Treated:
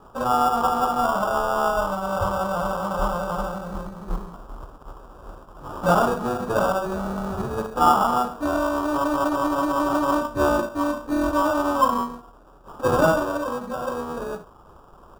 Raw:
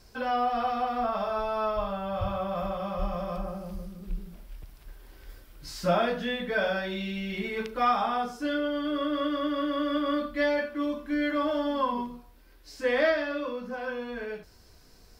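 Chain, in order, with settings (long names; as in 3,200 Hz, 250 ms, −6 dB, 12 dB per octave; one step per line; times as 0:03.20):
spectral envelope flattened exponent 0.6
decimation without filtering 21×
high shelf with overshoot 1,600 Hz −8 dB, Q 3
level +5 dB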